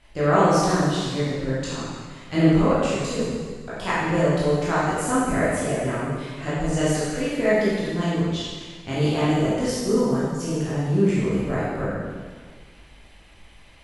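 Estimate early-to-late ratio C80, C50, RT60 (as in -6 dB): 0.0 dB, -3.0 dB, 1.6 s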